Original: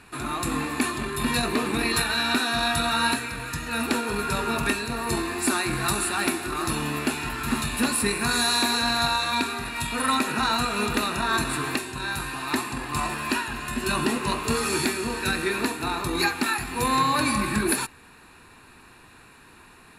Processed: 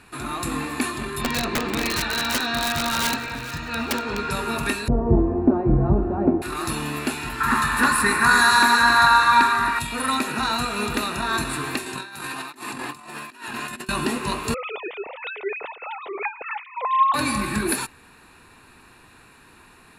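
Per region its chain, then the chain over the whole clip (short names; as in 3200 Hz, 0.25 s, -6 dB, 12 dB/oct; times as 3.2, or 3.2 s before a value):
1.21–4.31 LPF 5900 Hz 24 dB/oct + wrapped overs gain 16 dB + echo with dull and thin repeats by turns 0.219 s, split 2000 Hz, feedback 57%, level -10 dB
4.88–6.42 synth low-pass 620 Hz, resonance Q 2.1 + tilt -4 dB/oct
7.4–9.79 band shelf 1300 Hz +12 dB 1.3 oct + split-band echo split 1100 Hz, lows 0.273 s, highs 0.143 s, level -9.5 dB
11.86–13.89 HPF 170 Hz + negative-ratio compressor -34 dBFS, ratio -0.5
14.54–17.14 sine-wave speech + bell 1600 Hz -13 dB 0.28 oct
whole clip: dry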